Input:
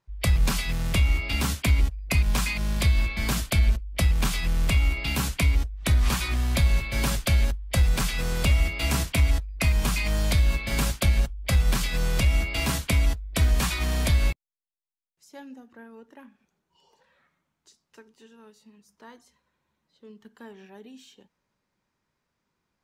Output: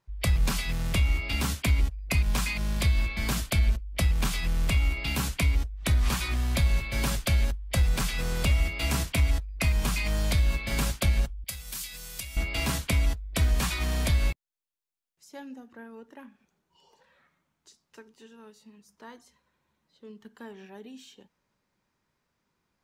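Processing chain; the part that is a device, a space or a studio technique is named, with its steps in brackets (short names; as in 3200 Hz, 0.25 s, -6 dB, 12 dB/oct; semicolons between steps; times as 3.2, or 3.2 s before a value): parallel compression (in parallel at -3 dB: compressor, threshold -38 dBFS, peak gain reduction 20 dB); 11.44–12.37 on the sum: pre-emphasis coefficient 0.9; gain -3.5 dB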